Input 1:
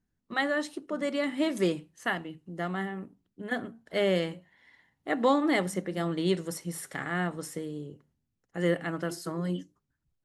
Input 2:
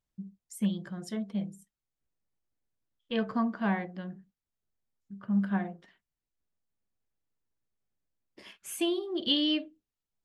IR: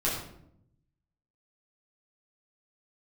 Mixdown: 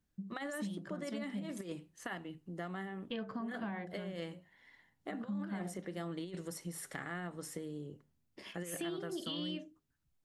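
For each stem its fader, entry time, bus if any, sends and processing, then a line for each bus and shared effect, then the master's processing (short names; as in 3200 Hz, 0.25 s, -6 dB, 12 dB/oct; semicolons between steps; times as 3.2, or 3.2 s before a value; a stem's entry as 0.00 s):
-5.0 dB, 0.00 s, no send, negative-ratio compressor -29 dBFS, ratio -0.5
0.0 dB, 0.00 s, no send, limiter -23 dBFS, peak gain reduction 8 dB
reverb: off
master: compressor 3:1, threshold -40 dBFS, peak gain reduction 11.5 dB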